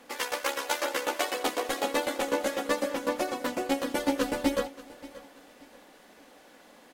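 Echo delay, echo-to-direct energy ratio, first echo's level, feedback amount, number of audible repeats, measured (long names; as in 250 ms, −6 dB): 581 ms, −18.0 dB, −18.5 dB, 33%, 2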